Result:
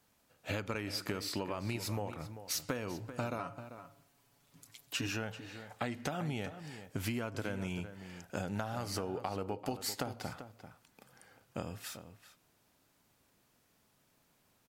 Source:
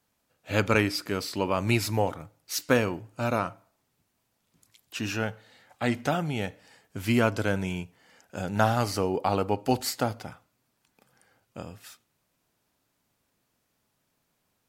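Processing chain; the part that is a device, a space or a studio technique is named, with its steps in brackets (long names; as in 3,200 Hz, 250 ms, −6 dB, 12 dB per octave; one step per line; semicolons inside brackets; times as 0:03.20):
0:03.38–0:05.07: comb filter 7.1 ms, depth 72%
serial compression, leveller first (downward compressor 2.5 to 1, threshold −27 dBFS, peak gain reduction 8 dB; downward compressor 6 to 1, threshold −37 dBFS, peak gain reduction 14 dB)
slap from a distant wall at 67 metres, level −11 dB
level +3 dB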